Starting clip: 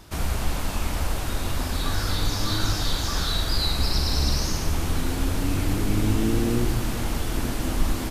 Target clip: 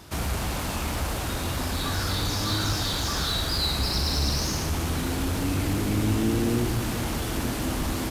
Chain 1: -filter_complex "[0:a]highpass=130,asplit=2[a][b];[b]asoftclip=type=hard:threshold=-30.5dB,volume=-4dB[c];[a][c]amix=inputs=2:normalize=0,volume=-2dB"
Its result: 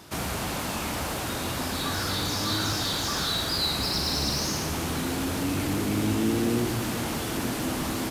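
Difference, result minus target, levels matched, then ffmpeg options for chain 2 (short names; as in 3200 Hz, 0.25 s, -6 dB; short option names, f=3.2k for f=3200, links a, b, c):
125 Hz band -4.0 dB
-filter_complex "[0:a]highpass=60,asplit=2[a][b];[b]asoftclip=type=hard:threshold=-30.5dB,volume=-4dB[c];[a][c]amix=inputs=2:normalize=0,volume=-2dB"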